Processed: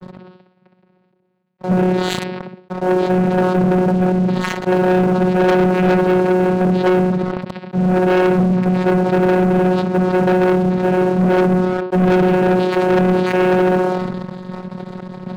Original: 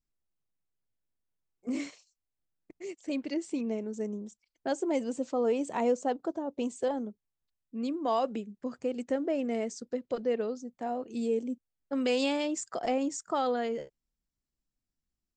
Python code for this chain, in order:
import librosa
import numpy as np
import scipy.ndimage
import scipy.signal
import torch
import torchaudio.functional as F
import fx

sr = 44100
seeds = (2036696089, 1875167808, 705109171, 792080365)

p1 = x + 0.5 * 10.0 ** (-34.0 / 20.0) * np.sign(x)
p2 = fx.low_shelf(p1, sr, hz=320.0, db=5.0)
p3 = p2 + fx.echo_feedback(p2, sr, ms=64, feedback_pct=29, wet_db=-6.5, dry=0)
p4 = fx.noise_vocoder(p3, sr, seeds[0], bands=4)
p5 = scipy.signal.sosfilt(scipy.signal.butter(6, 3000.0, 'lowpass', fs=sr, output='sos'), p4)
p6 = fx.peak_eq(p5, sr, hz=510.0, db=13.0, octaves=0.21)
p7 = fx.comb_fb(p6, sr, f0_hz=470.0, decay_s=0.54, harmonics='all', damping=0.0, mix_pct=80)
p8 = fx.vocoder(p7, sr, bands=8, carrier='saw', carrier_hz=183.0)
p9 = fx.fold_sine(p8, sr, drive_db=5, ceiling_db=-26.5)
p10 = p8 + (p9 * librosa.db_to_amplitude(-4.5))
p11 = fx.leveller(p10, sr, passes=3)
p12 = fx.sustainer(p11, sr, db_per_s=26.0)
y = p12 * librosa.db_to_amplitude(7.5)